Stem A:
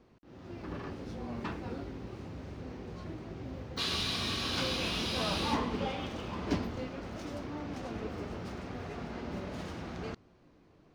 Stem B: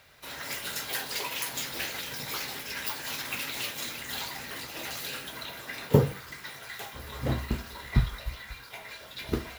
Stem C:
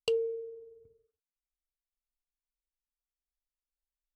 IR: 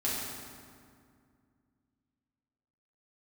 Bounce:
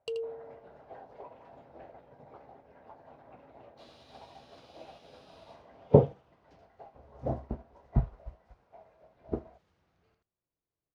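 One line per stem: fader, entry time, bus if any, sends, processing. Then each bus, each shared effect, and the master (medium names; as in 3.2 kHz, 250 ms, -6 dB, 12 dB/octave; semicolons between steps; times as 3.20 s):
-13.5 dB, 0.00 s, no send, echo send -6.5 dB, peaking EQ 250 Hz -9.5 dB 0.81 oct
-0.5 dB, 0.00 s, no send, no echo send, resonant low-pass 690 Hz, resonance Q 3.5
0.0 dB, 0.00 s, no send, echo send -9 dB, none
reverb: none
echo: delay 81 ms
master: treble shelf 8.6 kHz -4 dB; upward expansion 1.5:1, over -48 dBFS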